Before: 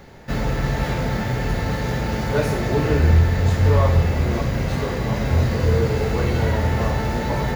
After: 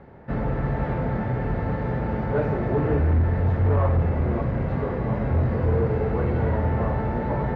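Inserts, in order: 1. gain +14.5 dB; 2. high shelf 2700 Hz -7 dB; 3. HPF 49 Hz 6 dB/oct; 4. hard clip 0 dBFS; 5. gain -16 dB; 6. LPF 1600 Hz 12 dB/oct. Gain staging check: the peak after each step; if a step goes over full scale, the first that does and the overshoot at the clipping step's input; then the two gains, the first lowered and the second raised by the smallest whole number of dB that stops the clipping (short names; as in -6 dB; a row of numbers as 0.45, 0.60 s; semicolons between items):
+9.0, +9.0, +8.0, 0.0, -16.0, -15.5 dBFS; step 1, 8.0 dB; step 1 +6.5 dB, step 5 -8 dB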